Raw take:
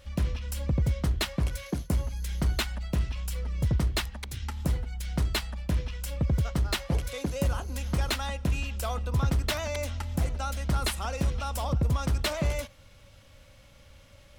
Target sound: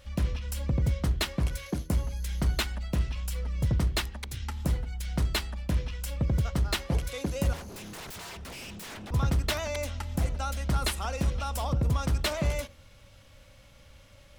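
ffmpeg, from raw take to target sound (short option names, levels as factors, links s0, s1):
-filter_complex "[0:a]asettb=1/sr,asplit=3[s0][s1][s2];[s0]atrim=end=7.534[s3];[s1]atrim=start=7.53:end=9.11,asetpts=PTS-STARTPTS,afade=t=in:d=0.004:c=qsin,afade=t=out:st=1.576:d=0.004:c=qsin,aeval=exprs='0.0141*(abs(mod(val(0)/0.0141+3,4)-2)-1)':c=same[s4];[s2]atrim=start=9.106[s5];[s3][s4]acrossfade=d=0.004:c1=hsin:c2=qsin[s6];[s6][s5]acrossfade=d=0.004:c1=qsin:c2=hsin,bandreject=f=79.85:t=h:w=4,bandreject=f=159.7:t=h:w=4,bandreject=f=239.55:t=h:w=4,bandreject=f=319.4:t=h:w=4,bandreject=f=399.25:t=h:w=4,bandreject=f=479.1:t=h:w=4,bandreject=f=558.95:t=h:w=4"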